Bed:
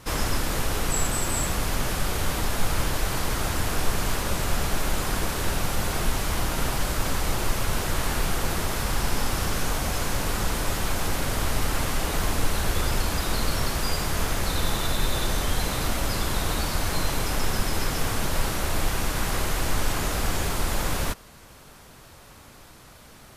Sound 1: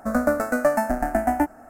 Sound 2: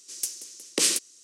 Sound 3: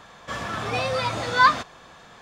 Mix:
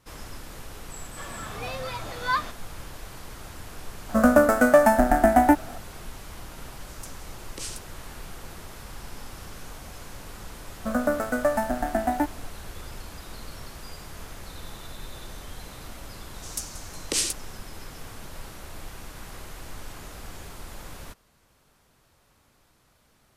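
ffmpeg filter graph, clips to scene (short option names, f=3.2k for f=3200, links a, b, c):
-filter_complex "[1:a]asplit=2[a][b];[2:a]asplit=2[c][d];[0:a]volume=-15dB[e];[a]acontrast=82[f];[3:a]atrim=end=2.21,asetpts=PTS-STARTPTS,volume=-9dB,afade=t=in:d=0.004:c=hsin,afade=t=out:st=2.206:d=0.004:c=hsin,adelay=890[g];[f]atrim=end=1.69,asetpts=PTS-STARTPTS,volume=-2dB,afade=t=in:d=0.004:c=hsin,afade=t=out:st=1.686:d=0.004:c=hsin,adelay=180369S[h];[c]atrim=end=1.23,asetpts=PTS-STARTPTS,volume=-14.5dB,afade=t=in:d=0.004:c=hsin,afade=t=out:st=1.226:d=0.004:c=hsin,adelay=6800[i];[b]atrim=end=1.69,asetpts=PTS-STARTPTS,volume=-3.5dB,afade=t=in:d=0.004:c=hsin,afade=t=out:st=1.686:d=0.004:c=hsin,adelay=10800[j];[d]atrim=end=1.23,asetpts=PTS-STARTPTS,volume=-3dB,afade=t=in:d=0.004:c=hsin,afade=t=out:st=1.226:d=0.004:c=hsin,adelay=16340[k];[e][g][h][i][j][k]amix=inputs=6:normalize=0"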